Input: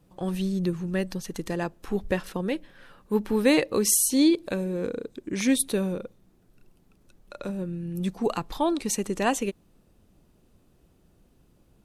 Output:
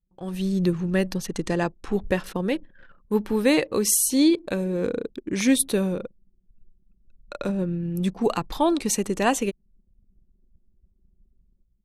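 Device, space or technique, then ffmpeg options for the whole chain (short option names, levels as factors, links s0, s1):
voice memo with heavy noise removal: -filter_complex "[0:a]asettb=1/sr,asplit=3[s0][s1][s2];[s0]atrim=end=1.274[s3];[s1]atrim=start=1.27:end=1.93,asetpts=PTS-STARTPTS,afade=t=in:d=0.004:c=qsin,afade=t=out:st=0.656:d=0.004:c=qsin,lowpass=f=9500:w=0.5412,lowpass=f=9500:w=1.3066[s4];[s2]atrim=start=1.926[s5];[s3][s4]acrossfade=d=0.004:c1=hsin:c2=qsin[s6];[s6][s5]acrossfade=d=0.004:c1=qsin:c2=hsin,anlmdn=0.01,dynaudnorm=f=170:g=5:m=4.47,volume=0.447"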